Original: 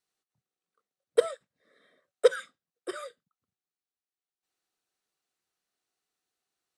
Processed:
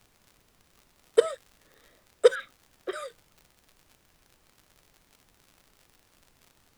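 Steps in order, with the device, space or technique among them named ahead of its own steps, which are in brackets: 2.35–2.93 s: steep low-pass 3.8 kHz; vinyl LP (wow and flutter; crackle 90 per s -45 dBFS; pink noise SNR 32 dB); trim +2.5 dB

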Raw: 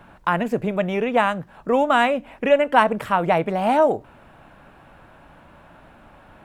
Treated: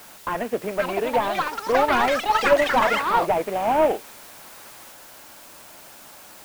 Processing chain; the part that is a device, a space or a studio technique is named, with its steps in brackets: army field radio (band-pass 330–2900 Hz; CVSD coder 16 kbps; white noise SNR 21 dB); ever faster or slower copies 615 ms, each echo +7 st, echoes 3

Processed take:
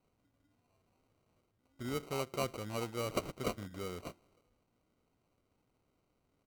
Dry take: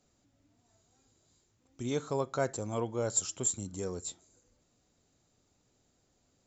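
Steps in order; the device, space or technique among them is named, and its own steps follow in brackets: crushed at another speed (playback speed 0.8×; sample-and-hold 32×; playback speed 1.25×); trim -5 dB

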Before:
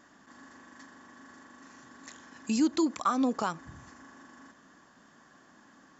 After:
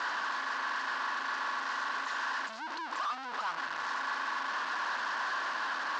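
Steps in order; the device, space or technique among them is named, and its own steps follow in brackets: home computer beeper (one-bit comparator; cabinet simulation 750–4700 Hz, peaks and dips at 990 Hz +8 dB, 1.5 kHz +7 dB, 2.3 kHz -5 dB, 3.5 kHz -3 dB)

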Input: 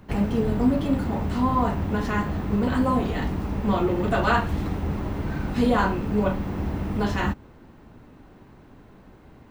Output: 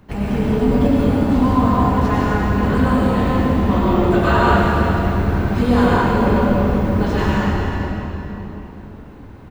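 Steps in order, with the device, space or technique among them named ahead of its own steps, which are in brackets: cave (delay 392 ms -12 dB; reverberation RT60 3.7 s, pre-delay 89 ms, DRR -6.5 dB)

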